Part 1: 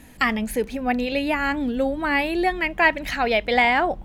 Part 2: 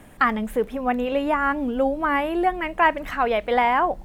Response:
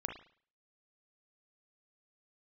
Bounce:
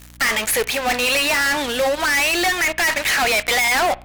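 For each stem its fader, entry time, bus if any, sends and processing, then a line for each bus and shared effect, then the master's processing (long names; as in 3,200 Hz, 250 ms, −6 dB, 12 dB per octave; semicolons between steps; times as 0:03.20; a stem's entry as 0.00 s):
−5.0 dB, 0.00 s, send −14.5 dB, high-pass filter 1,100 Hz 12 dB per octave; fuzz pedal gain 45 dB, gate −47 dBFS
−13.5 dB, 0.00 s, no send, no processing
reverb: on, pre-delay 35 ms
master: mains hum 60 Hz, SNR 25 dB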